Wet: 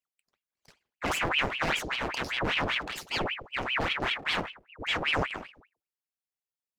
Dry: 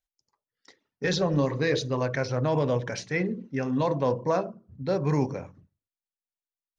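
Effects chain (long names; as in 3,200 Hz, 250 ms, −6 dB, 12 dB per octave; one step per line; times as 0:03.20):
lower of the sound and its delayed copy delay 0.4 ms
ring modulator whose carrier an LFO sweeps 1,500 Hz, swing 90%, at 5.1 Hz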